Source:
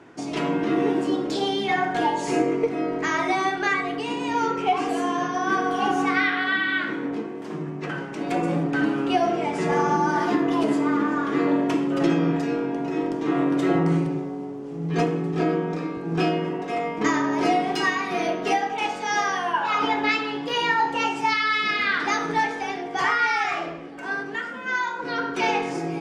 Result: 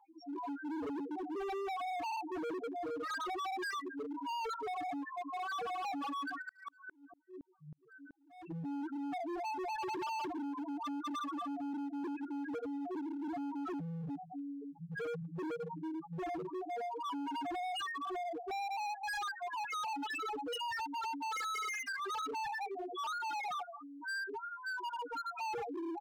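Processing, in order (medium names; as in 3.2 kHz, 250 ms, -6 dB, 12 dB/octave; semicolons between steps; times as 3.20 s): random holes in the spectrogram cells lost 27%; peaking EQ 1.1 kHz +5.5 dB 1.3 oct; bucket-brigade echo 242 ms, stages 4096, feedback 71%, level -21 dB; loudest bins only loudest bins 1; peak limiter -27.5 dBFS, peak gain reduction 11.5 dB; comb 2.4 ms, depth 87%; overload inside the chain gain 34.5 dB; bass shelf 93 Hz -7.5 dB; band-stop 2 kHz, Q 16; 6.41–8.45 s: sawtooth tremolo in dB swelling 5.7 Hz -> 2 Hz, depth 39 dB; trim -2.5 dB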